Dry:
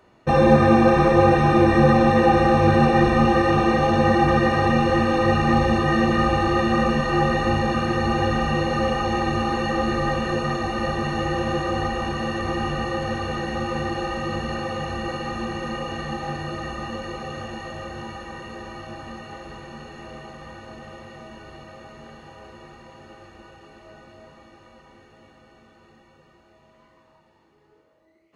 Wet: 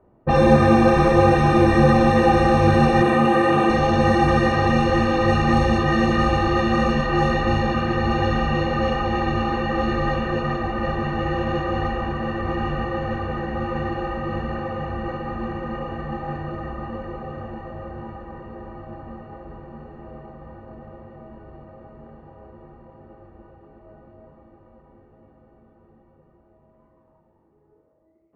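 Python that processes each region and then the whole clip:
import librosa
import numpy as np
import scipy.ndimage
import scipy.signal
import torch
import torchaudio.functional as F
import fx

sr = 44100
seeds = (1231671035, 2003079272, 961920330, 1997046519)

y = fx.chain(x, sr, fx.highpass(hz=170.0, slope=12),
    fx.peak_eq(hz=5300.0, db=-11.0, octaves=0.67),
    fx.env_flatten(amount_pct=50), at=(3.02, 3.7))
y = fx.high_shelf(y, sr, hz=7900.0, db=7.0)
y = fx.env_lowpass(y, sr, base_hz=740.0, full_db=-12.5)
y = fx.low_shelf(y, sr, hz=62.0, db=7.0)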